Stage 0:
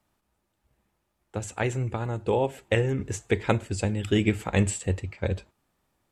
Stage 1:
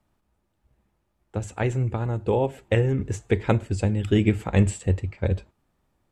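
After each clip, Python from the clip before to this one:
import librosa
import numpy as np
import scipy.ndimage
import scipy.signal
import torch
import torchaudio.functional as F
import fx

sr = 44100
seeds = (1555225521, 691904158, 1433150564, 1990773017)

y = fx.tilt_eq(x, sr, slope=-1.5)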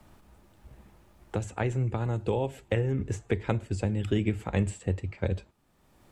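y = fx.band_squash(x, sr, depth_pct=70)
y = y * 10.0 ** (-6.0 / 20.0)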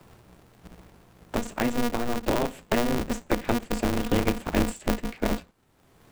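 y = x * np.sign(np.sin(2.0 * np.pi * 120.0 * np.arange(len(x)) / sr))
y = y * 10.0 ** (3.0 / 20.0)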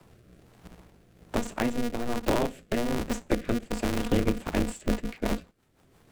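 y = fx.rotary_switch(x, sr, hz=1.2, then_hz=6.0, switch_at_s=4.1)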